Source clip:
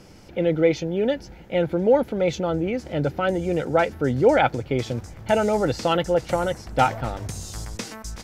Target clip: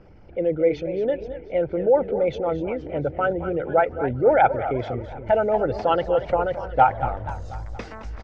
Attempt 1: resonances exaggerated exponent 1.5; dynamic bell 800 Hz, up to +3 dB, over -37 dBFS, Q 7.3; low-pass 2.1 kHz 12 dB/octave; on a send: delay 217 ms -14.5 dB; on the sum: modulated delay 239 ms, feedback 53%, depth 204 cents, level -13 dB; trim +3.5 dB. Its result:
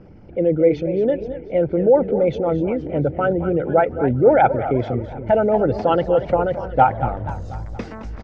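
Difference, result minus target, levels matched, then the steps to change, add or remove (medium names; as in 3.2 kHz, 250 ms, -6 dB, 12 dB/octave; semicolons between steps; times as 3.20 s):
250 Hz band +4.0 dB
add after low-pass: peaking EQ 200 Hz -9.5 dB 2.3 oct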